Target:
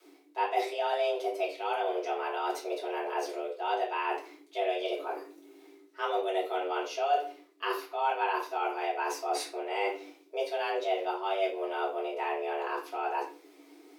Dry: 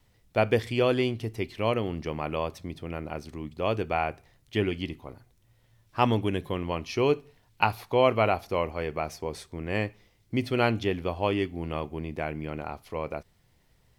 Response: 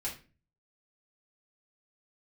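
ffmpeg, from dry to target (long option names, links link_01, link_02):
-filter_complex "[0:a]areverse,acompressor=threshold=-37dB:ratio=6,areverse,afreqshift=280[link_01];[1:a]atrim=start_sample=2205,asetrate=40572,aresample=44100[link_02];[link_01][link_02]afir=irnorm=-1:irlink=0,volume=6dB"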